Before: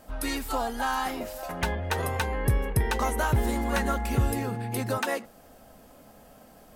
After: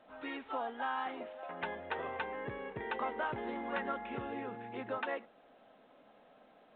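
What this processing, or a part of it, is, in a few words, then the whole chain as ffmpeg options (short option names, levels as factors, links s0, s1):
telephone: -af "highpass=290,lowpass=3200,volume=0.398" -ar 8000 -c:a pcm_alaw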